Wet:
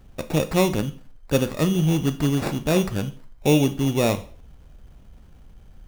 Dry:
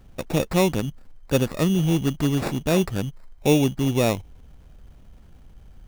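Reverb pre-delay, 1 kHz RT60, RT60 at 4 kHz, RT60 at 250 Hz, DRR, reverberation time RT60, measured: 7 ms, 0.45 s, 0.40 s, 0.45 s, 9.5 dB, 0.45 s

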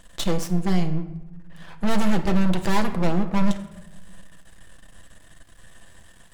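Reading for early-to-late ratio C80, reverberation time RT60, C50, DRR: 13.5 dB, 1.0 s, 11.5 dB, 5.0 dB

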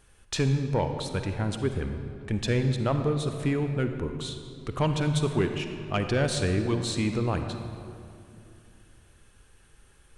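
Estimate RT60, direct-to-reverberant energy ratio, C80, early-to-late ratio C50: 2.7 s, 6.5 dB, 7.5 dB, 6.5 dB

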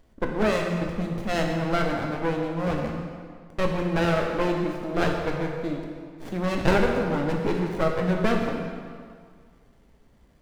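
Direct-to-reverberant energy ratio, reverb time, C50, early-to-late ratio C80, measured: 0.5 dB, 1.9 s, 3.0 dB, 4.0 dB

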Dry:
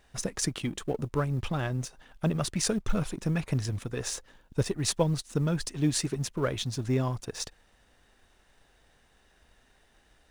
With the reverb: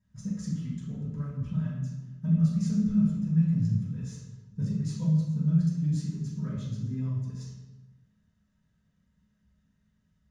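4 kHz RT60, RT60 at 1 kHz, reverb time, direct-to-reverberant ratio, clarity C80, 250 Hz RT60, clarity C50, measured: 0.80 s, 0.95 s, 1.1 s, -11.5 dB, 3.5 dB, 1.2 s, 0.5 dB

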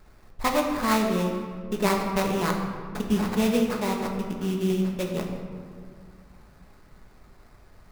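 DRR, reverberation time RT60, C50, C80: 1.0 dB, 2.0 s, 4.0 dB, 5.5 dB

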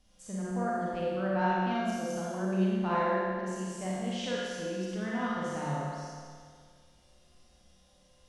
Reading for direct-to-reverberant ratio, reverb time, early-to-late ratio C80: -7.0 dB, 1.9 s, -2.0 dB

